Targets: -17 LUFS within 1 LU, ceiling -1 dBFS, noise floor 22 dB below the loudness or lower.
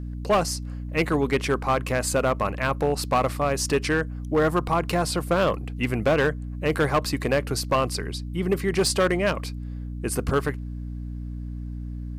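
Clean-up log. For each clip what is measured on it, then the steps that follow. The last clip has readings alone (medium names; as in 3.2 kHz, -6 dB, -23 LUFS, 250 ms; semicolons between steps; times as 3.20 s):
clipped samples 1.5%; clipping level -15.0 dBFS; hum 60 Hz; highest harmonic 300 Hz; hum level -30 dBFS; loudness -24.5 LUFS; peak level -15.0 dBFS; loudness target -17.0 LUFS
-> clip repair -15 dBFS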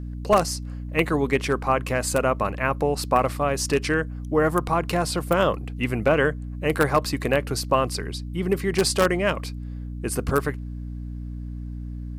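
clipped samples 0.0%; hum 60 Hz; highest harmonic 300 Hz; hum level -30 dBFS
-> de-hum 60 Hz, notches 5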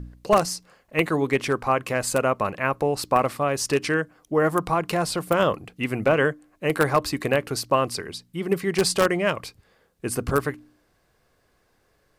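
hum not found; loudness -24.0 LUFS; peak level -5.5 dBFS; loudness target -17.0 LUFS
-> trim +7 dB; peak limiter -1 dBFS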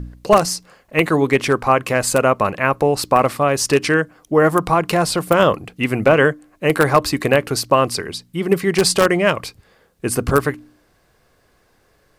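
loudness -17.5 LUFS; peak level -1.0 dBFS; noise floor -59 dBFS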